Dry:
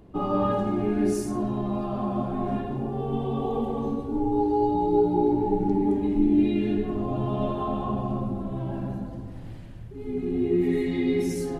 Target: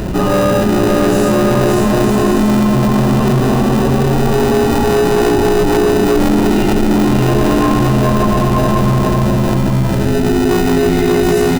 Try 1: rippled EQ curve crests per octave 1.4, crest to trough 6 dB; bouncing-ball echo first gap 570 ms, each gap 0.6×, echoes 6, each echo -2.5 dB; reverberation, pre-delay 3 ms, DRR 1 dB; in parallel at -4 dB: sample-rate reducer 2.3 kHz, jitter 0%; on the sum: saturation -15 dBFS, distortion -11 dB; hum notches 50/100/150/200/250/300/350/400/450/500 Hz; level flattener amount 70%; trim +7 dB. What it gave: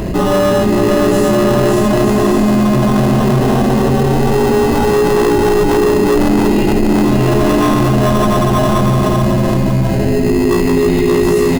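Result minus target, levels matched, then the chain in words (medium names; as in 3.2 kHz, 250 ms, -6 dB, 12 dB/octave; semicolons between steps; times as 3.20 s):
sample-rate reducer: distortion -8 dB
rippled EQ curve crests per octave 1.4, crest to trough 6 dB; bouncing-ball echo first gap 570 ms, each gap 0.6×, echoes 6, each echo -2.5 dB; reverberation, pre-delay 3 ms, DRR 1 dB; in parallel at -4 dB: sample-rate reducer 1.1 kHz, jitter 0%; on the sum: saturation -15 dBFS, distortion -11 dB; hum notches 50/100/150/200/250/300/350/400/450/500 Hz; level flattener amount 70%; trim +7 dB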